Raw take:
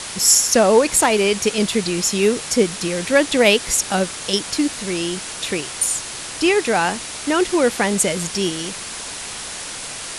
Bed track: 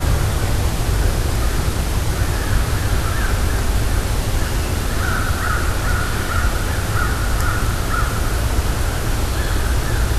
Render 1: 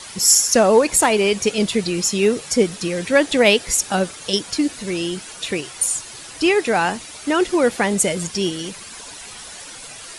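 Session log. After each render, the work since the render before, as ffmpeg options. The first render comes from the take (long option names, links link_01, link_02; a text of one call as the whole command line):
ffmpeg -i in.wav -af "afftdn=noise_reduction=10:noise_floor=-31" out.wav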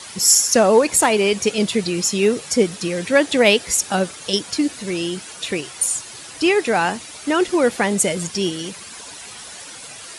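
ffmpeg -i in.wav -af "highpass=68" out.wav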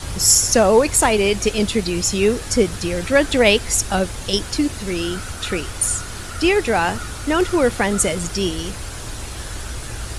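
ffmpeg -i in.wav -i bed.wav -filter_complex "[1:a]volume=-12dB[link_01];[0:a][link_01]amix=inputs=2:normalize=0" out.wav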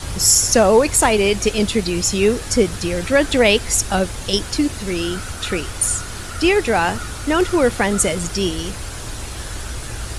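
ffmpeg -i in.wav -af "volume=1dB,alimiter=limit=-3dB:level=0:latency=1" out.wav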